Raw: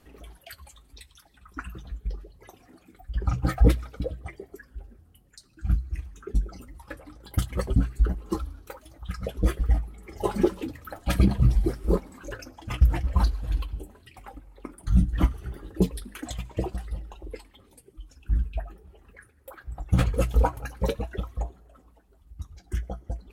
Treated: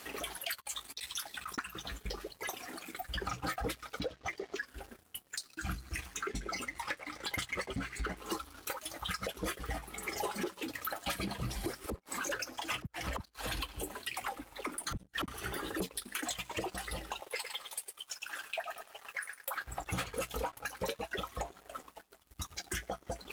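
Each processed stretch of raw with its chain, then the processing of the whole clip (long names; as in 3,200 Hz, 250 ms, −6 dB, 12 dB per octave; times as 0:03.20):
0:00.57–0:01.58: gain on one half-wave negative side −3 dB + compressor whose output falls as the input rises −52 dBFS, ratio −0.5 + double-tracking delay 17 ms −12 dB
0:03.99–0:04.66: parametric band 7,600 Hz −12 dB 0.22 octaves + bad sample-rate conversion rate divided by 3×, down none, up filtered
0:06.17–0:08.17: low-pass filter 7,800 Hz + parametric band 2,100 Hz +11 dB 0.38 octaves
0:11.86–0:15.28: gate with flip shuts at −15 dBFS, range −30 dB + all-pass dispersion lows, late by 46 ms, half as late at 310 Hz
0:17.20–0:19.56: high-pass filter 590 Hz 24 dB per octave + repeating echo 106 ms, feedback 32%, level −10.5 dB
whole clip: high-pass filter 1,400 Hz 6 dB per octave; downward compressor 6 to 1, threshold −52 dBFS; leveller curve on the samples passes 3; level +7 dB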